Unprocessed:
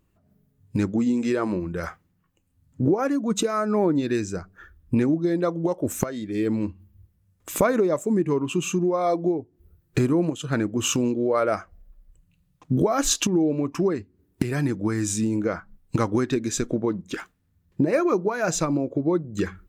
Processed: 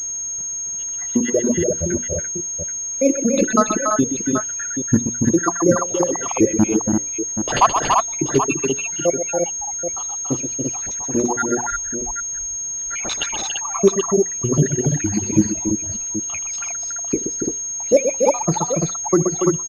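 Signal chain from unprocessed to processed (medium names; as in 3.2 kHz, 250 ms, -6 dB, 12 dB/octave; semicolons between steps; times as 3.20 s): random holes in the spectrogram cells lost 84%; in parallel at +2 dB: peak limiter -22.5 dBFS, peak gain reduction 11 dB; on the sum: bit crusher 9-bit; 6.48–8.02 s: waveshaping leveller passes 2; hum notches 60/120/180/240/300/360/420/480/540 Hz; on a send: multi-tap echo 77/126/283/340/780 ms -11.5/-5/-4/-3/-9 dB; on the sum: reverb removal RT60 1.5 s; added noise pink -59 dBFS; class-D stage that switches slowly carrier 6.5 kHz; trim +7 dB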